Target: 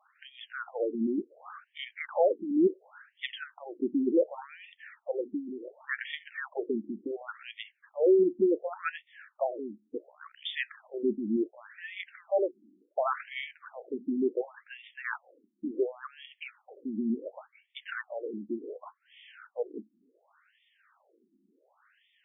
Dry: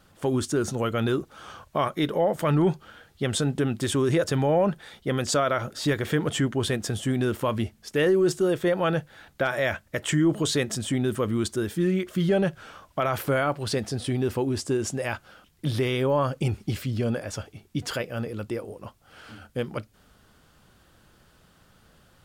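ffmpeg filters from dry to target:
-filter_complex "[0:a]asplit=3[s0][s1][s2];[s0]afade=t=out:st=9.98:d=0.02[s3];[s1]tremolo=f=61:d=0.857,afade=t=in:st=9.98:d=0.02,afade=t=out:st=10.43:d=0.02[s4];[s2]afade=t=in:st=10.43:d=0.02[s5];[s3][s4][s5]amix=inputs=3:normalize=0,afftfilt=real='re*between(b*sr/1024,250*pow(2600/250,0.5+0.5*sin(2*PI*0.69*pts/sr))/1.41,250*pow(2600/250,0.5+0.5*sin(2*PI*0.69*pts/sr))*1.41)':imag='im*between(b*sr/1024,250*pow(2600/250,0.5+0.5*sin(2*PI*0.69*pts/sr))/1.41,250*pow(2600/250,0.5+0.5*sin(2*PI*0.69*pts/sr))*1.41)':win_size=1024:overlap=0.75"

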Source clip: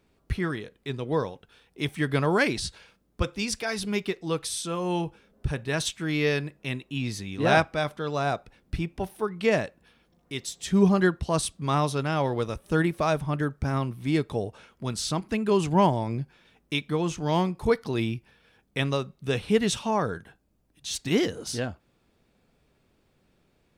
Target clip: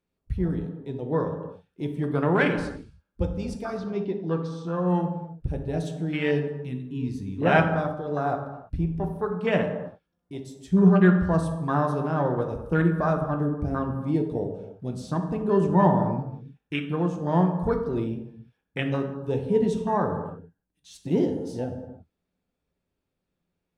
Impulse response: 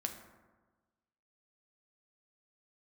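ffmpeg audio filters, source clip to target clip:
-filter_complex "[0:a]afwtdn=0.0355,asettb=1/sr,asplit=3[s0][s1][s2];[s0]atrim=end=3.774[s3];[s1]atrim=start=3.77:end=4.88,asetpts=PTS-STARTPTS,afade=t=in:d=0.004:c=qsin,afade=t=out:st=1.106:d=0.004:c=qsin,lowpass=f=5700:w=0.5412,lowpass=f=5700:w=1.3066[s4];[s2]atrim=start=4.876[s5];[s3][s4]acrossfade=d=0.004:c1=hsin:c2=qsin[s6];[s6][s5]acrossfade=d=0.004:c1=qsin:c2=hsin[s7];[1:a]atrim=start_sample=2205,afade=t=out:st=0.32:d=0.01,atrim=end_sample=14553,asetrate=35280,aresample=44100[s8];[s7][s8]afir=irnorm=-1:irlink=0"

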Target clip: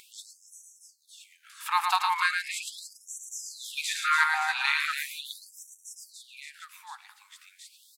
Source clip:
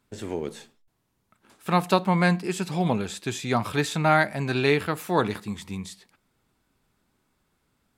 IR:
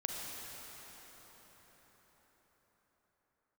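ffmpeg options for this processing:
-af "aecho=1:1:110|286|567.6|1018|1739:0.631|0.398|0.251|0.158|0.1,acompressor=mode=upward:threshold=0.0282:ratio=2.5,afftfilt=real='re*gte(b*sr/1024,730*pow(5700/730,0.5+0.5*sin(2*PI*0.39*pts/sr)))':imag='im*gte(b*sr/1024,730*pow(5700/730,0.5+0.5*sin(2*PI*0.39*pts/sr)))':win_size=1024:overlap=0.75"

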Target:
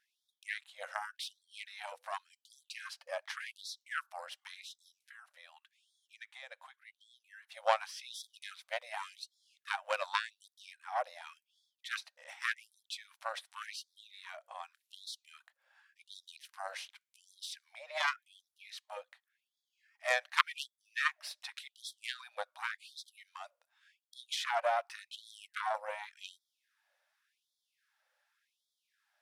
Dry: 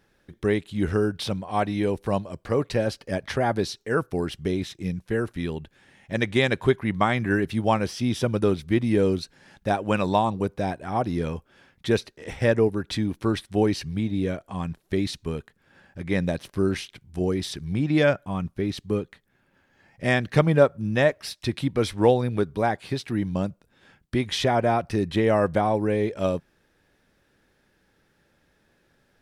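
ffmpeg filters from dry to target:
-filter_complex "[0:a]asettb=1/sr,asplit=3[s0][s1][s2];[s0]atrim=end=5.084[s3];[s1]atrim=start=5.08:end=7.52,asetpts=PTS-STARTPTS,afade=t=in:d=0.004:c=qsin,afade=t=out:st=2.436:d=0.004:c=qsin,acompressor=threshold=0.0282:ratio=10[s4];[s2]atrim=start=7.516[s5];[s3][s4]acrossfade=d=0.004:c1=hsin:c2=qsin[s6];[s6][s5]acrossfade=d=0.004:c1=qsin:c2=hsin,aeval=exprs='0.668*(cos(1*acos(clip(val(0)/0.668,-1,1)))-cos(1*PI/2))+0.188*(cos(3*acos(clip(val(0)/0.668,-1,1)))-cos(3*PI/2))+0.0106*(cos(5*acos(clip(val(0)/0.668,-1,1)))-cos(5*PI/2))+0.0422*(cos(6*acos(clip(val(0)/0.668,-1,1)))-cos(6*PI/2))+0.00944*(cos(8*acos(clip(val(0)/0.668,-1,1)))-cos(8*PI/2))':c=same,afftfilt=real='re*gte(b*sr/1024,490*pow(3300/490,0.5+0.5*sin(2*PI*0.88*pts/sr)))':imag='im*gte(b*sr/1024,490*pow(3300/490,0.5+0.5*sin(2*PI*0.88*pts/sr)))':win_size=1024:overlap=0.75,volume=1.41"

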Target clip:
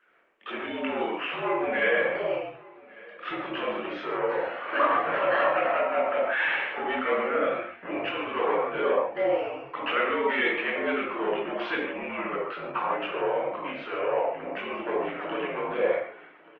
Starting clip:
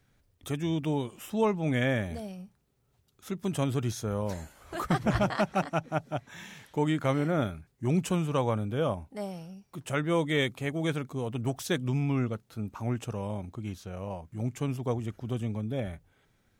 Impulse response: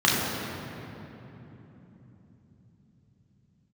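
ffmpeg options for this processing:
-filter_complex "[0:a]dynaudnorm=f=140:g=9:m=2.82,alimiter=limit=0.237:level=0:latency=1:release=144,acompressor=threshold=0.0398:ratio=6,asoftclip=type=tanh:threshold=0.0422,asettb=1/sr,asplit=3[s0][s1][s2];[s0]atrim=end=7.434[s3];[s1]atrim=start=7.43:end=8.05,asetpts=PTS-STARTPTS,afade=t=in:d=0.004:c=qsin,afade=t=out:st=0.616:d=0.004:c=qsin,asplit=2[s4][s5];[s5]adelay=20,volume=0.473[s6];[s4][s6]amix=inputs=2:normalize=0,atrim=end_sample=27342[s7];[s2]atrim=start=8.046[s8];[s3][s7]acrossfade=d=0.004:c1=hsin:c2=qsin[s9];[s9][s8]acrossfade=d=0.004:c1=qsin:c2=hsin,asettb=1/sr,asplit=3[s10][s11][s12];[s10]atrim=end=15.124[s13];[s11]atrim=start=15.12:end=15.86,asetpts=PTS-STARTPTS,afade=t=in:d=0.004:c=qsin,afade=t=out:st=0.736:d=0.004:c=qsin,asplit=2[s14][s15];[s15]highpass=f=720:p=1,volume=8.91,asoftclip=type=tanh:threshold=0.0398[s16];[s14][s16]amix=inputs=2:normalize=0,lowpass=f=1700:p=1,volume=0.501[s17];[s12]atrim=start=15.856[s18];[s13][s17]acrossfade=d=0.004:c1=hsin:c2=qsin[s19];[s19][s18]acrossfade=d=0.004:c1=qsin:c2=hsin,aecho=1:1:1150:0.0708[s20];[1:a]atrim=start_sample=2205,afade=t=out:st=0.32:d=0.01,atrim=end_sample=14553,asetrate=66150,aresample=44100[s21];[s20][s21]afir=irnorm=-1:irlink=0,highpass=f=550:t=q:w=0.5412,highpass=f=550:t=q:w=1.307,lowpass=f=2800:t=q:w=0.5176,lowpass=f=2800:t=q:w=0.7071,lowpass=f=2800:t=q:w=1.932,afreqshift=-58" -ar 48000 -c:a libopus -b:a 24k

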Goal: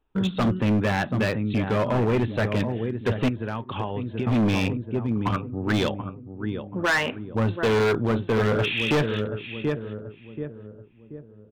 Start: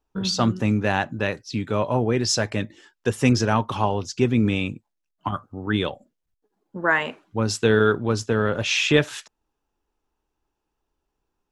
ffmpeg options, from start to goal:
-filter_complex "[0:a]equalizer=f=810:w=1.5:g=-3.5,asplit=2[s0][s1];[s1]adelay=732,lowpass=f=900:p=1,volume=0.335,asplit=2[s2][s3];[s3]adelay=732,lowpass=f=900:p=1,volume=0.45,asplit=2[s4][s5];[s5]adelay=732,lowpass=f=900:p=1,volume=0.45,asplit=2[s6][s7];[s7]adelay=732,lowpass=f=900:p=1,volume=0.45,asplit=2[s8][s9];[s9]adelay=732,lowpass=f=900:p=1,volume=0.45[s10];[s0][s2][s4][s6][s8][s10]amix=inputs=6:normalize=0,deesser=0.75,aresample=8000,aresample=44100,asettb=1/sr,asplit=3[s11][s12][s13];[s11]atrim=end=3.284[s14];[s12]atrim=start=3.28:end=4.27,asetpts=PTS-STARTPTS,afade=t=in:d=0.004:c=qsin,afade=t=out:st=0.986:d=0.004:c=qsin,acompressor=threshold=0.0355:ratio=12[s15];[s13]atrim=start=4.266[s16];[s14][s15]acrossfade=d=0.004:c1=hsin:c2=qsin[s17];[s17][s16]acrossfade=d=0.004:c1=qsin:c2=hsin,volume=12.6,asoftclip=hard,volume=0.0794,volume=1.58"

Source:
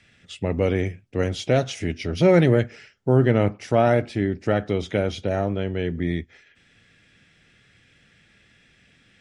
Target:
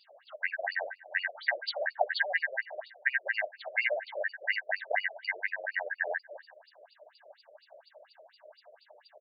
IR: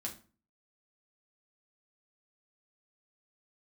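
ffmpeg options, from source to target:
-filter_complex "[0:a]afftfilt=real='real(if(lt(b,272),68*(eq(floor(b/68),0)*1+eq(floor(b/68),1)*0+eq(floor(b/68),2)*3+eq(floor(b/68),3)*2)+mod(b,68),b),0)':imag='imag(if(lt(b,272),68*(eq(floor(b/68),0)*1+eq(floor(b/68),1)*0+eq(floor(b/68),2)*3+eq(floor(b/68),3)*2)+mod(b,68),b),0)':win_size=2048:overlap=0.75,atempo=1,equalizer=f=3300:w=2.7:g=-3.5,acompressor=threshold=0.0794:ratio=5,firequalizer=gain_entry='entry(110,0);entry(310,-18);entry(610,13);entry(1100,-9);entry(2000,-5);entry(5900,12);entry(9000,13)':delay=0.05:min_phase=1,asplit=2[s0][s1];[s1]adelay=315,lowpass=f=1000:p=1,volume=0.168,asplit=2[s2][s3];[s3]adelay=315,lowpass=f=1000:p=1,volume=0.43,asplit=2[s4][s5];[s5]adelay=315,lowpass=f=1000:p=1,volume=0.43,asplit=2[s6][s7];[s7]adelay=315,lowpass=f=1000:p=1,volume=0.43[s8];[s2][s4][s6][s8]amix=inputs=4:normalize=0[s9];[s0][s9]amix=inputs=2:normalize=0,afftfilt=real='re*between(b*sr/1024,450*pow(3500/450,0.5+0.5*sin(2*PI*4.2*pts/sr))/1.41,450*pow(3500/450,0.5+0.5*sin(2*PI*4.2*pts/sr))*1.41)':imag='im*between(b*sr/1024,450*pow(3500/450,0.5+0.5*sin(2*PI*4.2*pts/sr))/1.41,450*pow(3500/450,0.5+0.5*sin(2*PI*4.2*pts/sr))*1.41)':win_size=1024:overlap=0.75,volume=1.78"

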